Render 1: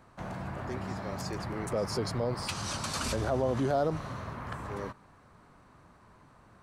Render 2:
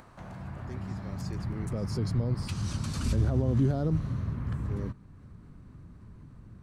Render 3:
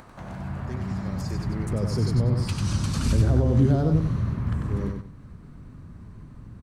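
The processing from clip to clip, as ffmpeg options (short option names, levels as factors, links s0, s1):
-af "asubboost=boost=10:cutoff=240,acompressor=mode=upward:threshold=0.0141:ratio=2.5,volume=0.473"
-af "aecho=1:1:95|190|285:0.562|0.141|0.0351,volume=1.78"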